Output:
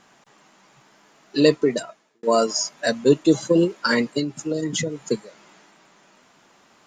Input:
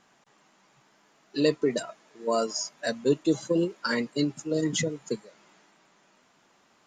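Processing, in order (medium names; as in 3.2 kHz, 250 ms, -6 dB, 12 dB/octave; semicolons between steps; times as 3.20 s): 1.51–2.23 s: fade out; 4.18–4.99 s: compression 6:1, threshold -29 dBFS, peak gain reduction 8.5 dB; trim +7.5 dB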